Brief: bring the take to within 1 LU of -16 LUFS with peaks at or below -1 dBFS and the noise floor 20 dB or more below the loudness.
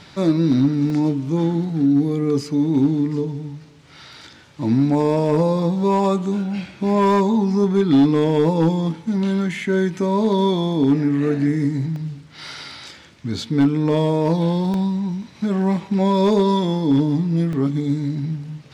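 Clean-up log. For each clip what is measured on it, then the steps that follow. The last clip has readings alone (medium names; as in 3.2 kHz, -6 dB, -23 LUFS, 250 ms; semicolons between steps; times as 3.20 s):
clipped samples 1.3%; clipping level -9.5 dBFS; dropouts 4; longest dropout 1.2 ms; loudness -19.5 LUFS; peak level -9.5 dBFS; loudness target -16.0 LUFS
-> clip repair -9.5 dBFS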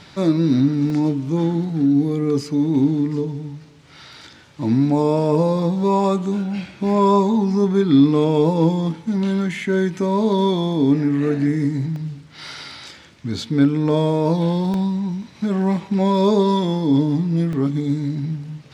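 clipped samples 0.0%; dropouts 4; longest dropout 1.2 ms
-> interpolate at 0.90/11.96/14.74/17.53 s, 1.2 ms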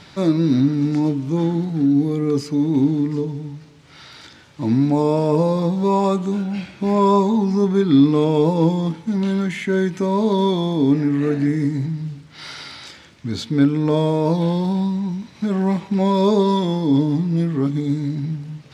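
dropouts 0; loudness -19.0 LUFS; peak level -4.5 dBFS; loudness target -16.0 LUFS
-> trim +3 dB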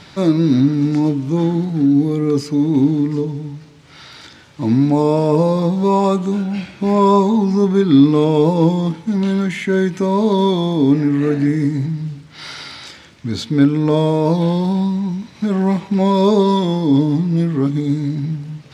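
loudness -16.0 LUFS; peak level -1.5 dBFS; noise floor -42 dBFS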